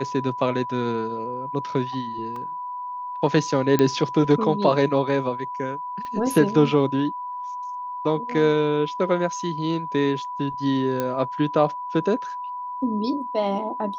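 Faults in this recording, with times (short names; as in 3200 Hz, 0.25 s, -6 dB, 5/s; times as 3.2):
tone 990 Hz -29 dBFS
2.36 gap 2.9 ms
3.79 pop -8 dBFS
6.05 pop -22 dBFS
11 pop -11 dBFS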